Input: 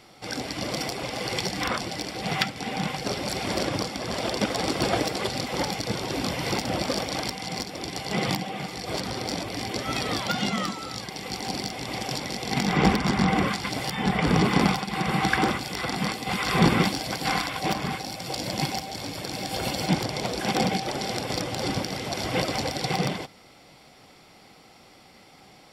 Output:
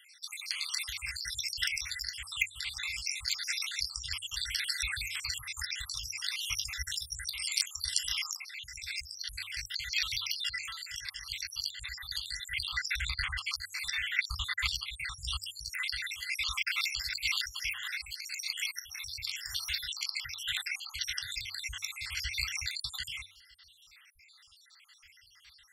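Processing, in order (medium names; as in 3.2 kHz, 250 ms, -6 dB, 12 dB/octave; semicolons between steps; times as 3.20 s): random holes in the spectrogram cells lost 73%; inverse Chebyshev band-stop 190–640 Hz, stop band 60 dB; peaking EQ 8.9 kHz +3 dB 0.87 oct, from 7.33 s +14.5 dB, from 8.33 s -2.5 dB; de-hum 95.53 Hz, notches 7; trim +3 dB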